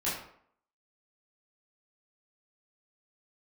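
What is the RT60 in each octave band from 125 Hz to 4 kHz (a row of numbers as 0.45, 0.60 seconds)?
0.55, 0.60, 0.60, 0.65, 0.55, 0.40 seconds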